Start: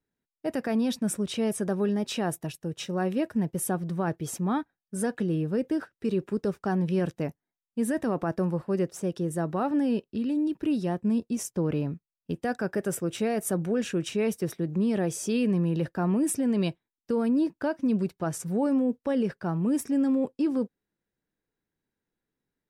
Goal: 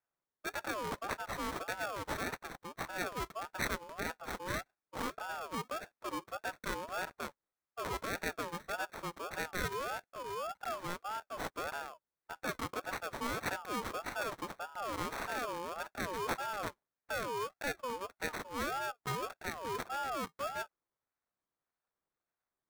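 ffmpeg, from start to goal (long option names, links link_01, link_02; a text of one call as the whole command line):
ffmpeg -i in.wav -af "highpass=frequency=950:poles=1,acrusher=samples=22:mix=1:aa=0.000001,aeval=exprs='val(0)*sin(2*PI*910*n/s+910*0.25/1.7*sin(2*PI*1.7*n/s))':channel_layout=same" out.wav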